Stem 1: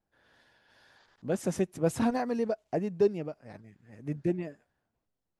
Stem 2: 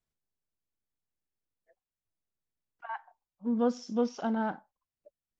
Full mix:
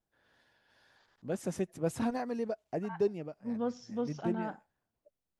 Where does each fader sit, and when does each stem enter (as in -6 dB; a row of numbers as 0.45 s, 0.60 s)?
-5.0 dB, -6.5 dB; 0.00 s, 0.00 s